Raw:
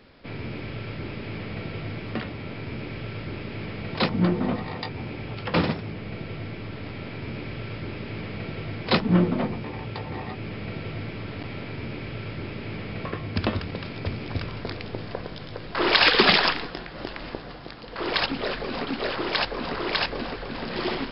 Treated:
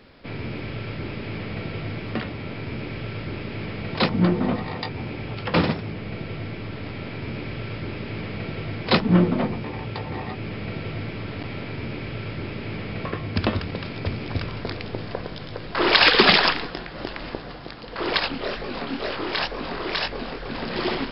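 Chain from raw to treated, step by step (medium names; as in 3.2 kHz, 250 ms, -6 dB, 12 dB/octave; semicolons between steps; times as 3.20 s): 18.19–20.46 s: chorus 2.1 Hz, delay 19 ms, depth 7.7 ms; trim +2.5 dB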